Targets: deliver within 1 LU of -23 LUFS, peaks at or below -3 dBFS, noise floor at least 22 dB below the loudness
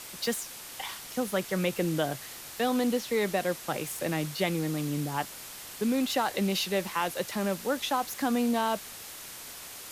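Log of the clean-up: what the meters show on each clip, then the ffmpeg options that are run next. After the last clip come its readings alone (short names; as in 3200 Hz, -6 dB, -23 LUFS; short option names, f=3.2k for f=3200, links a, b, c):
noise floor -44 dBFS; noise floor target -52 dBFS; loudness -30.0 LUFS; peak -15.5 dBFS; loudness target -23.0 LUFS
-> -af "afftdn=nr=8:nf=-44"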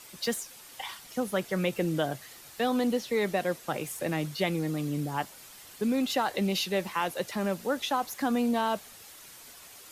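noise floor -50 dBFS; noise floor target -53 dBFS
-> -af "afftdn=nr=6:nf=-50"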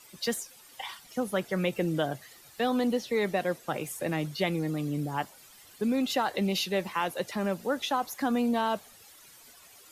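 noise floor -54 dBFS; loudness -30.5 LUFS; peak -15.5 dBFS; loudness target -23.0 LUFS
-> -af "volume=7.5dB"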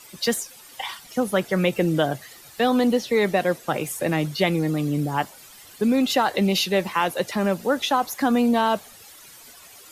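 loudness -23.0 LUFS; peak -8.0 dBFS; noise floor -47 dBFS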